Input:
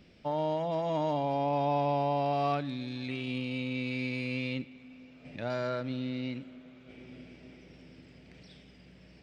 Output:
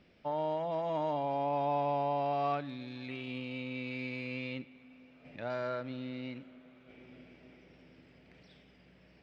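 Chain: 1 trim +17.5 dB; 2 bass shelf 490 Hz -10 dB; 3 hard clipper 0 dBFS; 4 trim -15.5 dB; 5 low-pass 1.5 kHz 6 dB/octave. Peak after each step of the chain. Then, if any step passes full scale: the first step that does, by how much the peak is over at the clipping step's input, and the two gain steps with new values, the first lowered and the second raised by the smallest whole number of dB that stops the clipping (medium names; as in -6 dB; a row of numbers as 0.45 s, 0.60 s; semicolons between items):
-1.0 dBFS, -5.0 dBFS, -5.0 dBFS, -20.5 dBFS, -22.0 dBFS; nothing clips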